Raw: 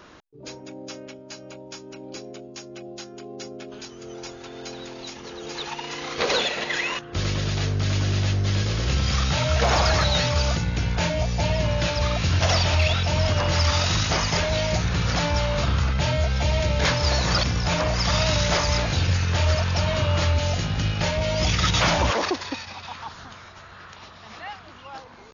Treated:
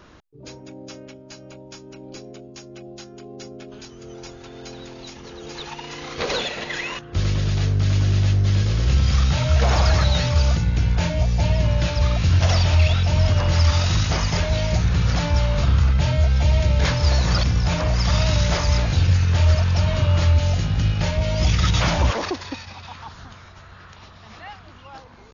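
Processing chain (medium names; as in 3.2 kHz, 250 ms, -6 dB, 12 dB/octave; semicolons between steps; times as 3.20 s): bass shelf 150 Hz +11 dB; trim -2.5 dB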